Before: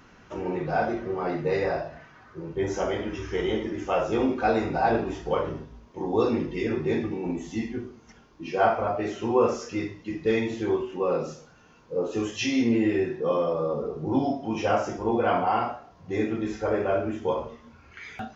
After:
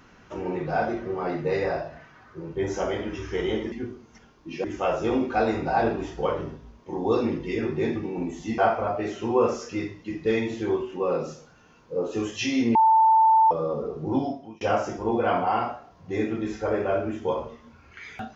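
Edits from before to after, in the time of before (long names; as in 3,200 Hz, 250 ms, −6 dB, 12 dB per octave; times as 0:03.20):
0:07.66–0:08.58: move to 0:03.72
0:12.75–0:13.51: beep over 888 Hz −14 dBFS
0:14.14–0:14.61: fade out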